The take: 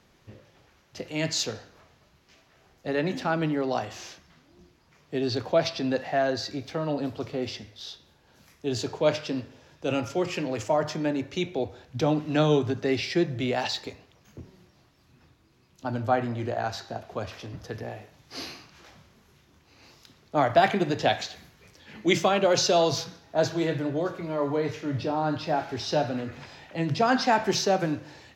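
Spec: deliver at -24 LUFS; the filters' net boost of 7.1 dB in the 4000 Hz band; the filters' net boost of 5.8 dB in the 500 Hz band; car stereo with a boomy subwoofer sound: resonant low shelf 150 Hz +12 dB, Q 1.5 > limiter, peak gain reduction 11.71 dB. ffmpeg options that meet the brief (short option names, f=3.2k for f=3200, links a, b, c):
-af "lowshelf=f=150:t=q:w=1.5:g=12,equalizer=f=500:t=o:g=8.5,equalizer=f=4k:t=o:g=8.5,volume=1.5dB,alimiter=limit=-13.5dB:level=0:latency=1"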